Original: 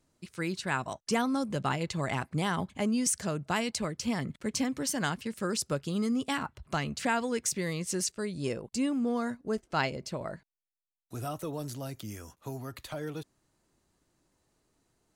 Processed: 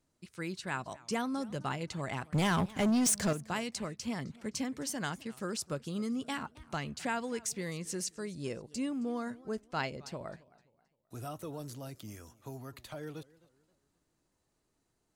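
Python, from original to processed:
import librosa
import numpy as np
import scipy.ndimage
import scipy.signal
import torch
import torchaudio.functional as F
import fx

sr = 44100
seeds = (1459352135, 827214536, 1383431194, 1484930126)

y = fx.leveller(x, sr, passes=3, at=(2.31, 3.33))
y = fx.echo_warbled(y, sr, ms=263, feedback_pct=36, rate_hz=2.8, cents=185, wet_db=-22)
y = F.gain(torch.from_numpy(y), -5.5).numpy()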